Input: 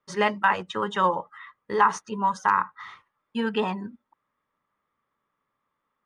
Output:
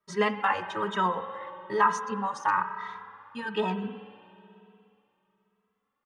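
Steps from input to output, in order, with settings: reverb RT60 2.8 s, pre-delay 60 ms, DRR 10 dB; endless flanger 2.7 ms +1.1 Hz

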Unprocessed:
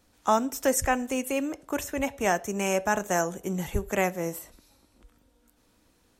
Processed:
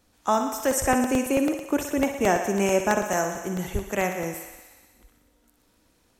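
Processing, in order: 0.85–3.09 bell 310 Hz +7.5 dB 1.7 oct; thinning echo 61 ms, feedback 77%, high-pass 320 Hz, level -8 dB; crackling interface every 0.11 s, samples 64, repeat, from 0.6

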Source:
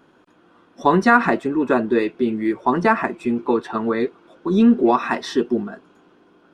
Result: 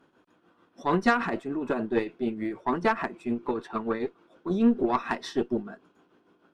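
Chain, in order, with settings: tremolo triangle 6.7 Hz, depth 65%; added harmonics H 6 -23 dB, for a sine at -2.5 dBFS; gain -6 dB

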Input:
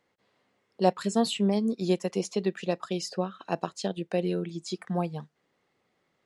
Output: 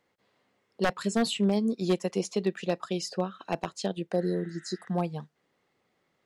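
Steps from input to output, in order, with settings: spectral repair 4.15–4.85, 1300–3900 Hz after; wavefolder -16.5 dBFS

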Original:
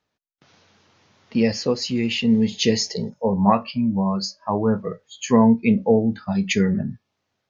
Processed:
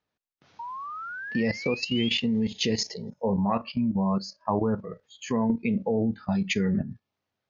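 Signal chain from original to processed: painted sound rise, 0.59–2.19, 920–3600 Hz -29 dBFS; level quantiser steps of 12 dB; air absorption 58 m

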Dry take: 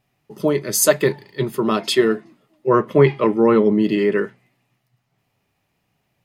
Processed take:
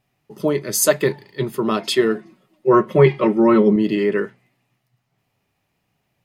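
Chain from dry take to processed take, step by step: 2.15–3.76 comb 5.4 ms, depth 77%; gain -1 dB

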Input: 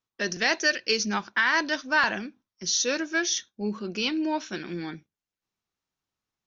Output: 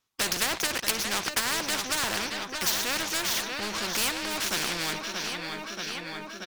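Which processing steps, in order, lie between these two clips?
treble ducked by the level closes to 1100 Hz, closed at -20 dBFS; tilt shelf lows -3 dB; sample leveller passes 3; on a send: feedback echo 0.631 s, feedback 57%, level -16 dB; on the sum: spectral compressor 4:1; gain +2.5 dB

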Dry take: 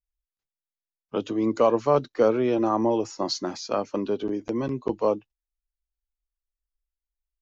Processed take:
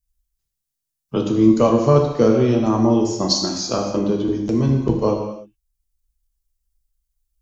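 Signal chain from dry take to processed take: tone controls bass +14 dB, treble +12 dB; transient shaper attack +2 dB, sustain -3 dB; non-linear reverb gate 0.34 s falling, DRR 0.5 dB

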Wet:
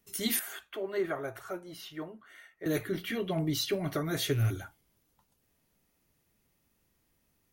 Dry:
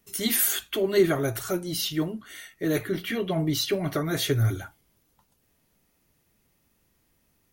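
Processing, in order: rattling part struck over -24 dBFS, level -33 dBFS; 0.39–2.66 three-band isolator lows -13 dB, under 460 Hz, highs -15 dB, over 2100 Hz; gain -5 dB

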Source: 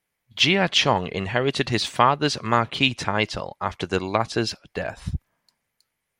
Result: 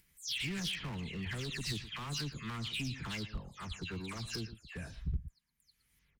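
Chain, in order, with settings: spectral delay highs early, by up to 0.205 s; limiter -15 dBFS, peak gain reduction 8 dB; low shelf 99 Hz +9.5 dB; echo 0.115 s -16.5 dB; hard clip -21.5 dBFS, distortion -12 dB; upward compressor, threshold -44 dBFS; passive tone stack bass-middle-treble 6-0-2; gain +5.5 dB

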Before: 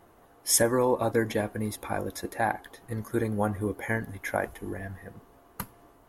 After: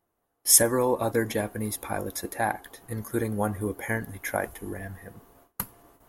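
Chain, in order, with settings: gate with hold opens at -46 dBFS; high shelf 7600 Hz +10.5 dB

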